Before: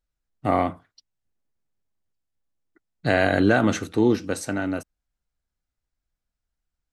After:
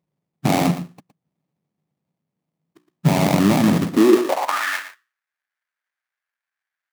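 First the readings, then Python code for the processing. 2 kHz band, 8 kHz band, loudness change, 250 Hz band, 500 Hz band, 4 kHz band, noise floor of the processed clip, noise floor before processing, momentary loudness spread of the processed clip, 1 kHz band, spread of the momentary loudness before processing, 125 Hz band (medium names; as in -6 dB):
+0.5 dB, +6.5 dB, +4.5 dB, +6.0 dB, +2.5 dB, +7.0 dB, under -85 dBFS, -85 dBFS, 11 LU, +4.0 dB, 11 LU, +7.5 dB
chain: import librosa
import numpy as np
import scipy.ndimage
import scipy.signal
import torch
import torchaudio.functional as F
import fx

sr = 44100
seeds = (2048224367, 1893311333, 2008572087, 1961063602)

p1 = fx.hum_notches(x, sr, base_hz=60, count=6)
p2 = fx.over_compress(p1, sr, threshold_db=-27.0, ratio=-1.0)
p3 = p1 + (p2 * 10.0 ** (0.5 / 20.0))
p4 = fx.notch_comb(p3, sr, f0_hz=470.0)
p5 = fx.sample_hold(p4, sr, seeds[0], rate_hz=1500.0, jitter_pct=20)
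p6 = fx.filter_sweep_highpass(p5, sr, from_hz=160.0, to_hz=1600.0, start_s=3.84, end_s=4.64, q=5.4)
p7 = p6 + fx.echo_single(p6, sr, ms=115, db=-12.5, dry=0)
y = p7 * 10.0 ** (-2.0 / 20.0)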